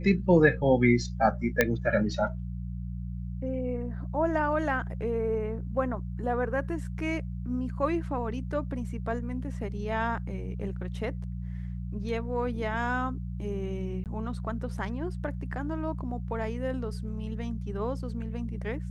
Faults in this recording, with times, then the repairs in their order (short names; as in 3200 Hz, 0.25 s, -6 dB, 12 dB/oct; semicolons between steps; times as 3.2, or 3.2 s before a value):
hum 60 Hz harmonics 3 -35 dBFS
1.61 pop -7 dBFS
14.04–14.06 gap 18 ms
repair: de-click; de-hum 60 Hz, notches 3; interpolate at 14.04, 18 ms